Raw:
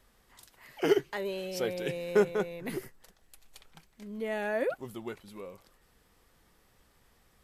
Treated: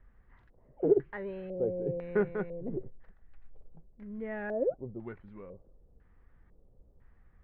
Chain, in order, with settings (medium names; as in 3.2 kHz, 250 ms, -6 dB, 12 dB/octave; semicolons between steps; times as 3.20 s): RIAA curve playback; LFO low-pass square 1 Hz 540–1800 Hz; trim -8.5 dB